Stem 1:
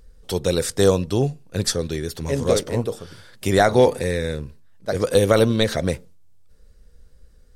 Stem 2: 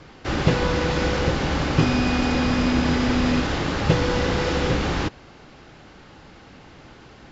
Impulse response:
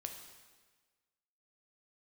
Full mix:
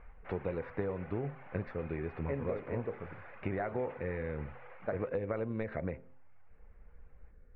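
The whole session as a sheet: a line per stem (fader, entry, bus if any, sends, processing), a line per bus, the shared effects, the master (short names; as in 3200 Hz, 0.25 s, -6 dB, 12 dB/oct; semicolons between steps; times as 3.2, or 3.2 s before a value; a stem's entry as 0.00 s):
-4.5 dB, 0.00 s, no send, notch 3200 Hz, Q 7.4; compressor 16:1, threshold -26 dBFS, peak gain reduction 17 dB
-12.0 dB, 0.00 s, no send, steep high-pass 520 Hz; reverb removal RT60 0.65 s; auto duck -11 dB, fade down 0.40 s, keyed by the first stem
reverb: off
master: elliptic low-pass 2300 Hz, stop band 80 dB; de-hum 130.6 Hz, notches 7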